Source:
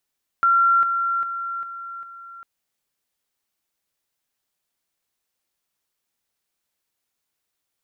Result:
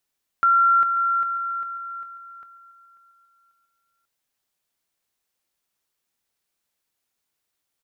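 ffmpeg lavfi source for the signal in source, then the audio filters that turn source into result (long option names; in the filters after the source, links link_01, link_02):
-f lavfi -i "aevalsrc='pow(10,(-13.5-6*floor(t/0.4))/20)*sin(2*PI*1370*t)':duration=2:sample_rate=44100"
-af "aecho=1:1:541|1082|1623:0.133|0.0533|0.0213"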